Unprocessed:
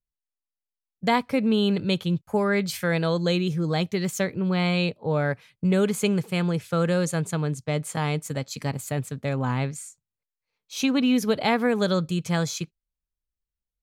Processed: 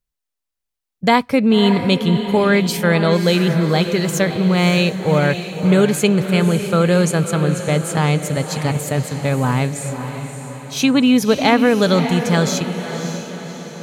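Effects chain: echo that smears into a reverb 577 ms, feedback 51%, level -8.5 dB; trim +8 dB

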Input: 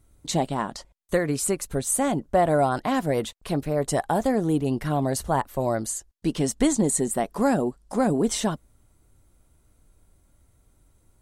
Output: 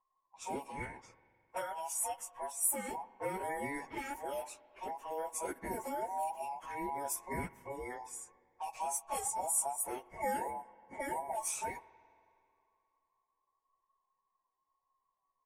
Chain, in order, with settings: every band turned upside down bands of 1 kHz; plain phase-vocoder stretch 1.5×; level-controlled noise filter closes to 1.4 kHz, open at -23.5 dBFS; pre-emphasis filter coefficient 0.8; gate -59 dBFS, range -8 dB; FFT filter 2.5 kHz 0 dB, 3.7 kHz -18 dB, 5.4 kHz -4 dB; spring tank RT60 2.7 s, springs 49/57 ms, chirp 70 ms, DRR 19 dB; speed mistake 44.1 kHz file played as 48 kHz

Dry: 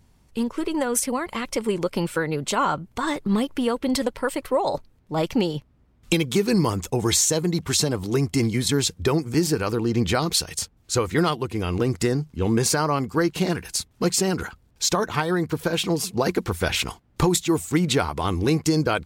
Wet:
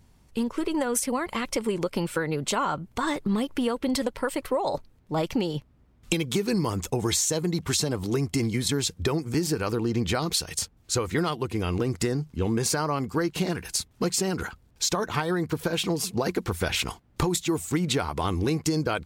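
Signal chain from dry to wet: compression 3:1, threshold -23 dBFS, peak gain reduction 6.5 dB

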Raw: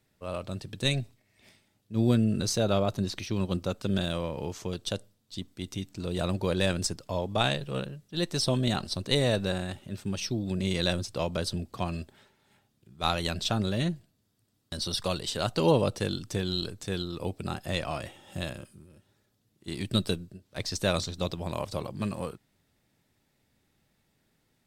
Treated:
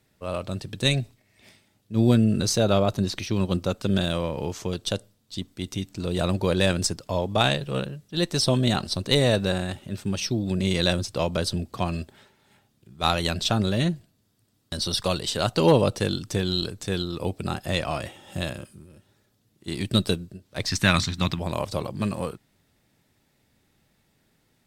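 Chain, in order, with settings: one-sided clip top -18.5 dBFS, bottom -12 dBFS; 20.67–21.39 s: graphic EQ 125/250/500/1000/2000 Hz +5/+5/-12/+4/+10 dB; trim +5 dB

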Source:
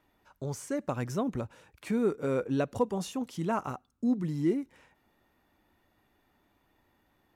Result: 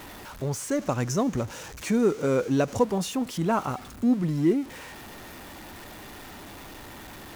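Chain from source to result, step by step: jump at every zero crossing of -42.5 dBFS; 0.71–2.84 s: peaking EQ 6.3 kHz +9 dB 0.51 oct; trim +5 dB

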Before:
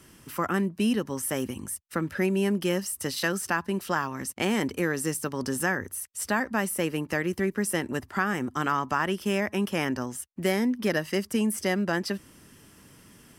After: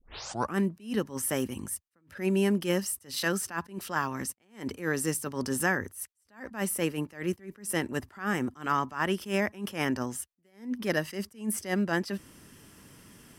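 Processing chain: tape start-up on the opening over 0.55 s; attacks held to a fixed rise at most 180 dB/s

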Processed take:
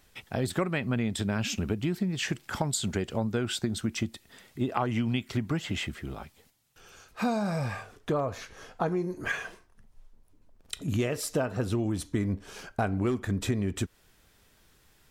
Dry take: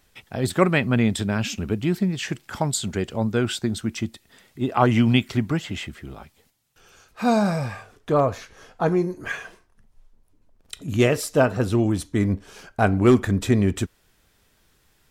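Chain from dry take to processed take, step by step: compression 8:1, threshold -25 dBFS, peak gain reduction 14.5 dB

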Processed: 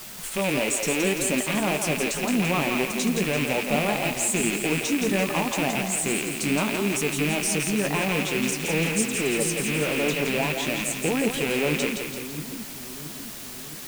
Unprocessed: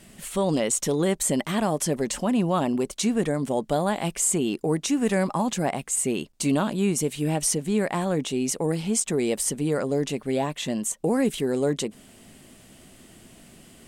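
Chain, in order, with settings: rattle on loud lows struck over -36 dBFS, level -15 dBFS; in parallel at +1 dB: level held to a coarse grid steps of 19 dB; 8.51–10.25 s: on the sum: phase dispersion lows, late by 87 ms, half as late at 2.6 kHz; word length cut 6-bit, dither triangular; flange 0.88 Hz, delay 7.6 ms, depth 8.5 ms, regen -39%; on a send: two-band feedback delay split 320 Hz, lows 670 ms, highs 169 ms, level -5.5 dB

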